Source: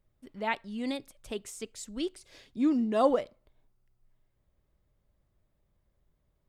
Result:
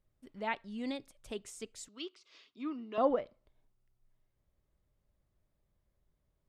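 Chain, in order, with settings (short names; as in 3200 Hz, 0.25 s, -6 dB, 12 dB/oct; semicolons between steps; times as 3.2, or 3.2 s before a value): treble ducked by the level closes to 2500 Hz, closed at -23 dBFS; 1.88–2.98 speaker cabinet 460–5900 Hz, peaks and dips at 550 Hz -10 dB, 790 Hz -9 dB, 1200 Hz +7 dB, 1700 Hz -7 dB, 2800 Hz +4 dB; gain -4.5 dB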